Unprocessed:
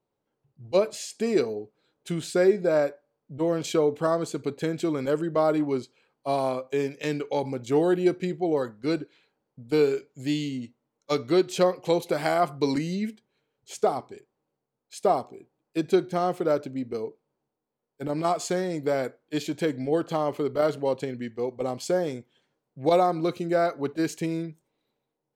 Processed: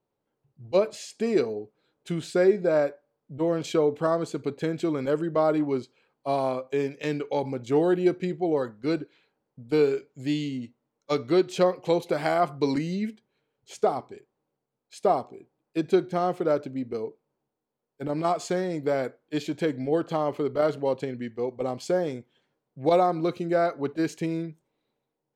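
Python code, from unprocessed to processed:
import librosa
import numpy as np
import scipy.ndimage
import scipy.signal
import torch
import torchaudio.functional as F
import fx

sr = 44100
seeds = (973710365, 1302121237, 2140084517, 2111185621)

y = fx.high_shelf(x, sr, hz=6400.0, db=-9.0)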